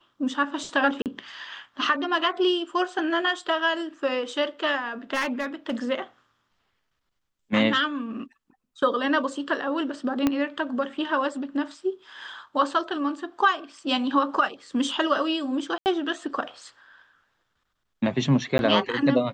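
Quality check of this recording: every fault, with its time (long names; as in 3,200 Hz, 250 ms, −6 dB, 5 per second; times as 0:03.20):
0:01.02–0:01.06: drop-out 38 ms
0:05.13–0:05.73: clipping −20.5 dBFS
0:10.27: click −9 dBFS
0:15.78–0:15.86: drop-out 79 ms
0:18.58–0:18.59: drop-out 11 ms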